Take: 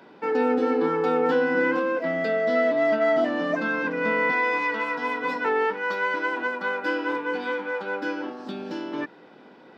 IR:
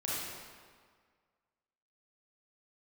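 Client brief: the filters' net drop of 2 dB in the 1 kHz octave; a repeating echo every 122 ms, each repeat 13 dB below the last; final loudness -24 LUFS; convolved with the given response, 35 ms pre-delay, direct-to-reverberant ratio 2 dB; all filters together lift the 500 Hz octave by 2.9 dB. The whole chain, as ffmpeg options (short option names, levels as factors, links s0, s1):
-filter_complex "[0:a]equalizer=f=500:t=o:g=4.5,equalizer=f=1000:t=o:g=-4,aecho=1:1:122|244|366:0.224|0.0493|0.0108,asplit=2[s0][s1];[1:a]atrim=start_sample=2205,adelay=35[s2];[s1][s2]afir=irnorm=-1:irlink=0,volume=0.447[s3];[s0][s3]amix=inputs=2:normalize=0,volume=0.75"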